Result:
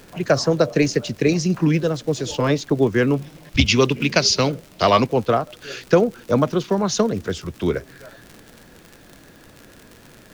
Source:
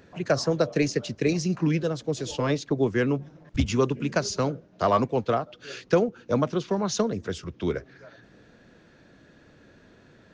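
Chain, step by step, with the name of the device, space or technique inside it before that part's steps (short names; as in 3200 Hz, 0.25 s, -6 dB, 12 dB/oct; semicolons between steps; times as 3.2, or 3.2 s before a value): 3.16–5.07 band shelf 3400 Hz +10.5 dB; vinyl LP (crackle 80/s -36 dBFS; pink noise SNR 32 dB); gain +6 dB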